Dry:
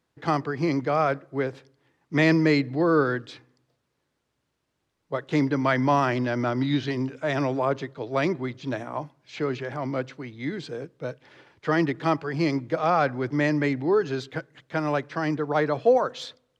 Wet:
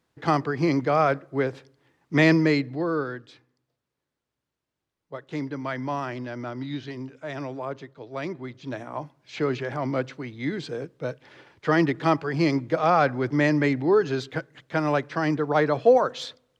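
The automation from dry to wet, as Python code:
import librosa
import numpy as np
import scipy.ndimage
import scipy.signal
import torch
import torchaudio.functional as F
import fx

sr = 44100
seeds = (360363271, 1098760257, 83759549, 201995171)

y = fx.gain(x, sr, db=fx.line((2.26, 2.0), (3.15, -8.0), (8.18, -8.0), (9.41, 2.0)))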